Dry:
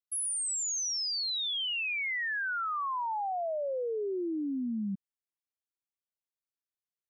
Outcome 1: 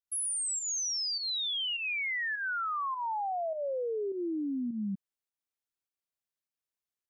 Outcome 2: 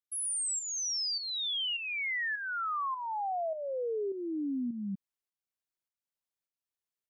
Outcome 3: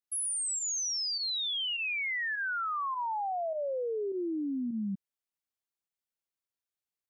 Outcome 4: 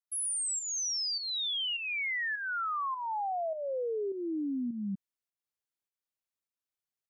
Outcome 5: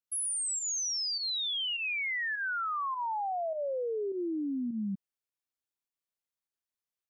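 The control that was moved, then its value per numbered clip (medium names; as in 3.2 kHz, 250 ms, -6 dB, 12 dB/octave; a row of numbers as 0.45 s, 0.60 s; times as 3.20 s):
volume shaper, release: 149 ms, 482 ms, 61 ms, 316 ms, 100 ms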